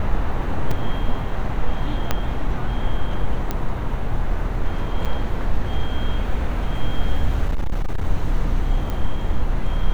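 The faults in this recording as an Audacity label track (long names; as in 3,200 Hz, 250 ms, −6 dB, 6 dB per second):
0.710000	0.710000	drop-out 3.8 ms
2.110000	2.110000	click −5 dBFS
3.510000	3.510000	click −10 dBFS
5.050000	5.060000	drop-out 6.9 ms
7.460000	8.050000	clipping −16 dBFS
8.900000	8.900000	click −15 dBFS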